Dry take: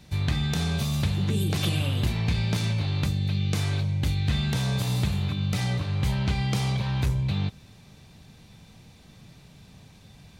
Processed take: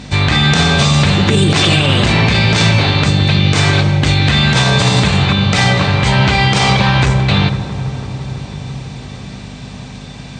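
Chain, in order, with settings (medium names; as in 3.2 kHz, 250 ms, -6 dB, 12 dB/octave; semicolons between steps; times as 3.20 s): tilt EQ -1.5 dB/octave; feedback echo behind a low-pass 166 ms, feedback 84%, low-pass 1.3 kHz, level -14 dB; on a send at -17 dB: reverberation RT60 3.5 s, pre-delay 143 ms; on the sum: hum 50 Hz, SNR 18 dB; high-pass 620 Hz 6 dB/octave; dynamic bell 1.7 kHz, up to +3 dB, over -49 dBFS, Q 0.76; brick-wall FIR low-pass 9 kHz; loudness maximiser +24 dB; trim -1 dB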